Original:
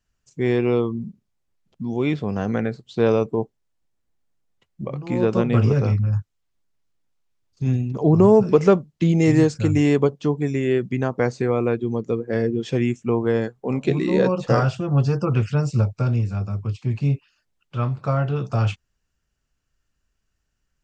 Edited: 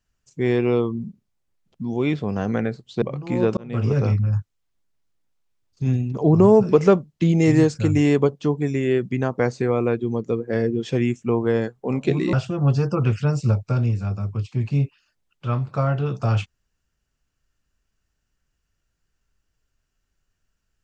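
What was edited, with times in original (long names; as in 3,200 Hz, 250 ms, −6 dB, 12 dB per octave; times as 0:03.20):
0:03.02–0:04.82: remove
0:05.37–0:05.81: fade in
0:14.13–0:14.63: remove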